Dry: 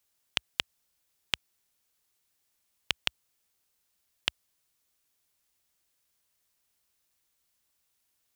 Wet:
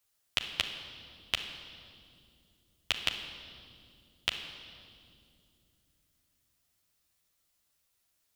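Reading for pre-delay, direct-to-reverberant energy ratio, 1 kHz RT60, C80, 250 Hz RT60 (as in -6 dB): 10 ms, 0.5 dB, 2.0 s, 8.0 dB, 4.0 s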